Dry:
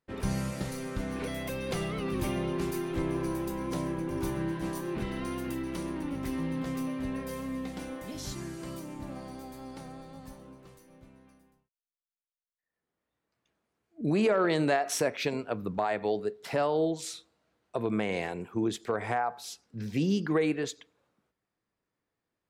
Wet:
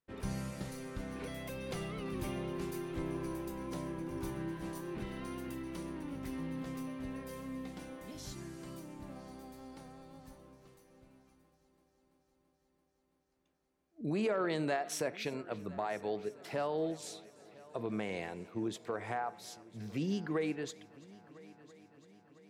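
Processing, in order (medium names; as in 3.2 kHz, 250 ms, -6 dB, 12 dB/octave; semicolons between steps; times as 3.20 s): multi-head delay 335 ms, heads first and third, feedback 66%, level -22.5 dB; trim -7.5 dB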